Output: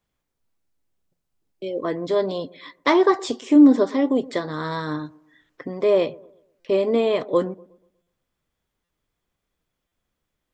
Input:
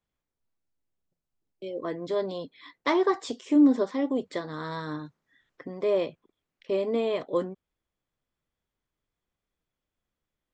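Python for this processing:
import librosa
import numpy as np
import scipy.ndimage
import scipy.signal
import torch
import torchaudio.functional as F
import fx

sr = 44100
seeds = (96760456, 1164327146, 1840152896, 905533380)

y = fx.echo_wet_lowpass(x, sr, ms=121, feedback_pct=38, hz=940.0, wet_db=-20.5)
y = fx.buffer_glitch(y, sr, at_s=(6.6, 8.02, 8.84, 9.87), block=256, repeats=7)
y = F.gain(torch.from_numpy(y), 7.0).numpy()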